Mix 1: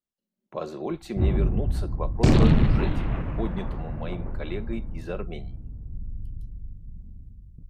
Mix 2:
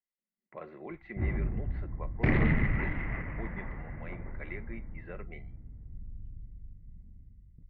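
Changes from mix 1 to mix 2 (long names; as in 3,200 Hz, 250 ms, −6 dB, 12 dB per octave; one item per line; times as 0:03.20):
background +4.0 dB
master: add transistor ladder low-pass 2,100 Hz, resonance 85%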